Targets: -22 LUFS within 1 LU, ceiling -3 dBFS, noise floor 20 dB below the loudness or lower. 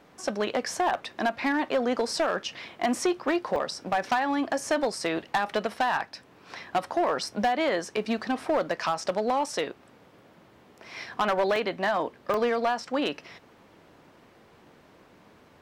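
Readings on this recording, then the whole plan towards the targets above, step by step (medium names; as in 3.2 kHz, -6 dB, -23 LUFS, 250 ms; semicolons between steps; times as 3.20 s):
clipped samples 1.0%; clipping level -18.5 dBFS; dropouts 4; longest dropout 1.6 ms; loudness -28.0 LUFS; peak level -18.5 dBFS; loudness target -22.0 LUFS
-> clip repair -18.5 dBFS; interpolate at 1.05/3.56/11.56/12.34 s, 1.6 ms; trim +6 dB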